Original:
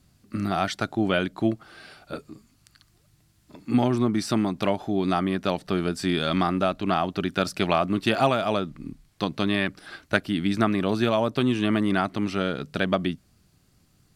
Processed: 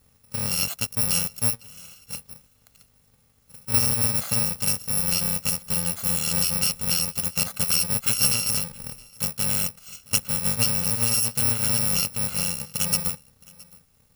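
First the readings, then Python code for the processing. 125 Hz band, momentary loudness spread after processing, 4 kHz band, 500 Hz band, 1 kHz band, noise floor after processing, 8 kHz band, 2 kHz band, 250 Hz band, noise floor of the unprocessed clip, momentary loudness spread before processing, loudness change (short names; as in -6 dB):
-1.0 dB, 12 LU, +5.0 dB, -13.0 dB, -11.5 dB, -62 dBFS, +22.0 dB, -4.0 dB, -11.0 dB, -63 dBFS, 10 LU, +3.0 dB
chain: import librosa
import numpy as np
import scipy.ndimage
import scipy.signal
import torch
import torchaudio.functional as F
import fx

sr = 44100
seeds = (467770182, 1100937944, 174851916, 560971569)

y = fx.bit_reversed(x, sr, seeds[0], block=128)
y = y + 10.0 ** (-24.0 / 20.0) * np.pad(y, (int(667 * sr / 1000.0), 0))[:len(y)]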